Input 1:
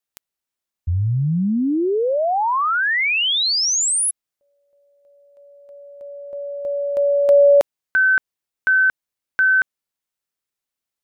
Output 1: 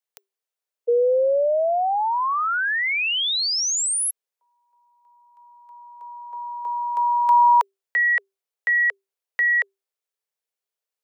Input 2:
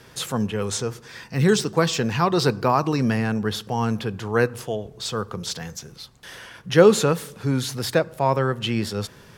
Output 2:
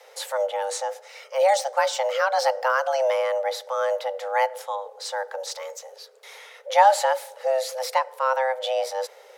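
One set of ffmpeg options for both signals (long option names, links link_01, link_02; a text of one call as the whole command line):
ffmpeg -i in.wav -af "lowshelf=frequency=220:gain=6,afreqshift=390,volume=-4dB" out.wav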